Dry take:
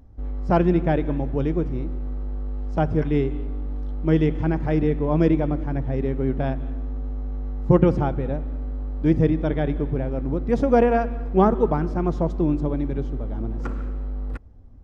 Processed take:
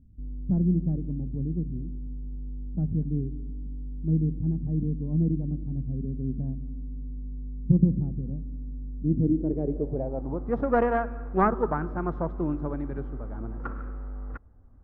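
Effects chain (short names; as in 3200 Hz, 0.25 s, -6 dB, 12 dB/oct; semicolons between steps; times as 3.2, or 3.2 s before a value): tracing distortion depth 0.11 ms; high shelf 2200 Hz +2.5 dB, from 6.97 s -8.5 dB, from 8.2 s +3.5 dB; low-pass sweep 200 Hz -> 1400 Hz, 8.99–10.69; gain -7.5 dB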